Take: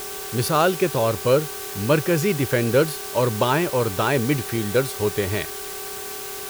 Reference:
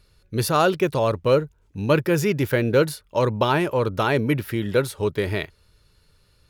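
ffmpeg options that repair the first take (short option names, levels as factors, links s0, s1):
-af "bandreject=f=384:t=h:w=4,bandreject=f=768:t=h:w=4,bandreject=f=1152:t=h:w=4,bandreject=f=1536:t=h:w=4,bandreject=f=420:w=30,afftdn=nr=27:nf=-33"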